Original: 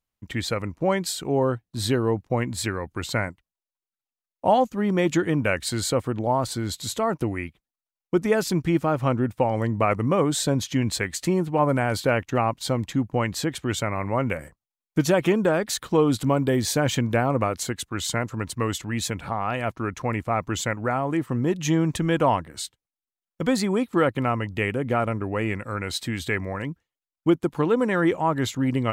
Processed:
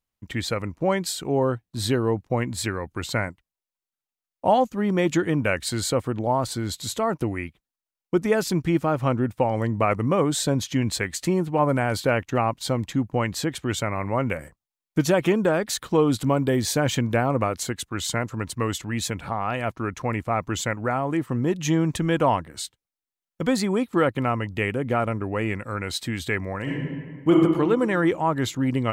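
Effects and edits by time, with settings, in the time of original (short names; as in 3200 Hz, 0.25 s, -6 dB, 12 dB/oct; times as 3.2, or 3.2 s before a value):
26.62–27.3 reverb throw, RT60 1.7 s, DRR -6.5 dB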